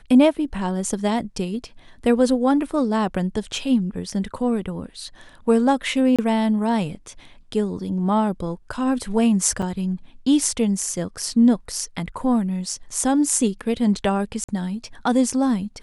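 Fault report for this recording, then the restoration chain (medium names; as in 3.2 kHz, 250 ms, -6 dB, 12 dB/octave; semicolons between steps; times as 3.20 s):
6.16–6.19 s: dropout 26 ms
9.62–9.63 s: dropout 5.6 ms
14.44–14.48 s: dropout 45 ms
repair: interpolate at 6.16 s, 26 ms; interpolate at 9.62 s, 5.6 ms; interpolate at 14.44 s, 45 ms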